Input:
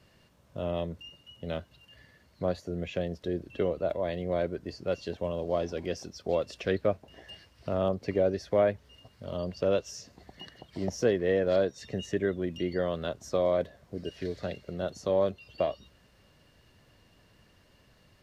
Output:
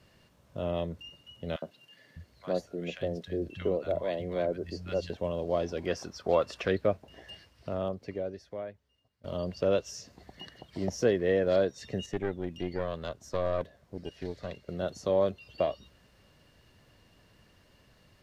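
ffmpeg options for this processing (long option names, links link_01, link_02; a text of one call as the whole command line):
ffmpeg -i in.wav -filter_complex "[0:a]asettb=1/sr,asplit=3[link_01][link_02][link_03];[link_01]atrim=end=1.564[link_04];[link_02]atrim=start=1.56:end=5.1,asetpts=PTS-STARTPTS,afade=type=in:duration=0.004:curve=qsin,afade=type=out:start_time=3.536:duration=0.004:curve=qsin,acrossover=split=150|1100[link_05][link_06][link_07];[link_06]adelay=60[link_08];[link_05]adelay=600[link_09];[link_09][link_08][link_07]amix=inputs=3:normalize=0,atrim=end_sample=156114[link_10];[link_03]atrim=start=5.096[link_11];[link_04][link_10]acrossfade=duration=0.004:curve1=hsin:curve2=qsin[link_12];[link_12][link_11]acrossfade=duration=0.004:curve1=qsin:curve2=hsin,asettb=1/sr,asplit=3[link_13][link_14][link_15];[link_13]atrim=end=5.864[link_16];[link_14]atrim=start=5.86:end=6.68,asetpts=PTS-STARTPTS,afade=type=in:duration=0.004:curve=qsin,afade=type=out:start_time=0.816:duration=0.004:curve=qsin,equalizer=frequency=1200:width_type=o:width=1.4:gain=10[link_17];[link_15]atrim=start=6.676[link_18];[link_16][link_17]acrossfade=duration=0.004:curve1=hsin:curve2=qsin[link_19];[link_19][link_18]acrossfade=duration=0.004:curve1=qsin:curve2=hsin,asettb=1/sr,asplit=3[link_20][link_21][link_22];[link_20]atrim=end=12.064[link_23];[link_21]atrim=start=12.06:end=14.69,asetpts=PTS-STARTPTS,afade=type=in:duration=0.004:curve=qsin,afade=type=out:start_time=2.626:duration=0.004:curve=qsin,aeval=exprs='(tanh(12.6*val(0)+0.75)-tanh(0.75))/12.6':channel_layout=same[link_24];[link_22]atrim=start=14.686[link_25];[link_23][link_24]acrossfade=duration=0.004:curve1=hsin:curve2=qsin[link_26];[link_26][link_25]acrossfade=duration=0.004:curve1=qsin:curve2=hsin,asplit=2[link_27][link_28];[link_27]atrim=end=9.24,asetpts=PTS-STARTPTS,afade=type=out:start_time=7.32:duration=1.92:curve=qua:silence=0.0891251[link_29];[link_28]atrim=start=9.24,asetpts=PTS-STARTPTS,afade=type=in:duration=0.004:curve=hsin:silence=0.0891251[link_30];[link_29][link_30]concat=n=2:v=0:a=1" out.wav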